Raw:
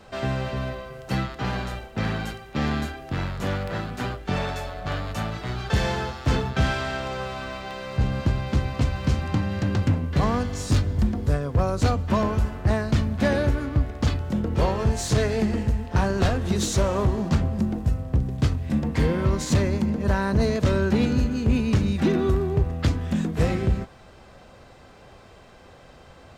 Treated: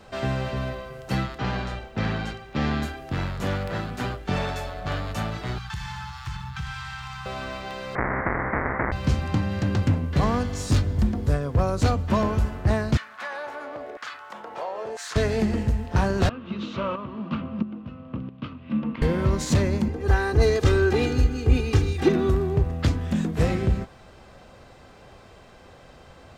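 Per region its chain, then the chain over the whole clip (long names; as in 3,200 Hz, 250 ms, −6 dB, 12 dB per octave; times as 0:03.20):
0:01.38–0:02.83: low-pass filter 6,300 Hz + bit-depth reduction 12 bits, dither none
0:05.58–0:07.26: Chebyshev band-stop filter 180–820 Hz, order 5 + downward compressor 2.5 to 1, threshold −33 dBFS + floating-point word with a short mantissa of 6 bits
0:07.95–0:08.92: each half-wave held at its own peak + Chebyshev low-pass filter 2,000 Hz, order 8 + every bin compressed towards the loudest bin 4 to 1
0:12.97–0:15.16: high-shelf EQ 4,200 Hz −8.5 dB + auto-filter high-pass saw down 1 Hz 460–1,600 Hz + downward compressor 2.5 to 1, threshold −32 dBFS
0:16.29–0:19.02: loudspeaker in its box 210–3,200 Hz, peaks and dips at 230 Hz +6 dB, 410 Hz −9 dB, 750 Hz −10 dB, 1,200 Hz +8 dB, 1,800 Hz −8 dB, 2,800 Hz +6 dB + shaped tremolo saw up 1.5 Hz, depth 70%
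0:19.88–0:22.09: comb filter 2.5 ms, depth 86% + multiband upward and downward expander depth 40%
whole clip: no processing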